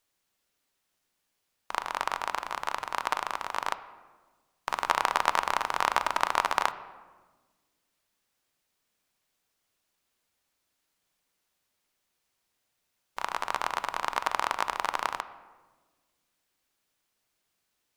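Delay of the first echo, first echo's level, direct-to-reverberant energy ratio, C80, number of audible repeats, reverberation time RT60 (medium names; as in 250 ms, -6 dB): no echo, no echo, 11.5 dB, 15.5 dB, no echo, 1.3 s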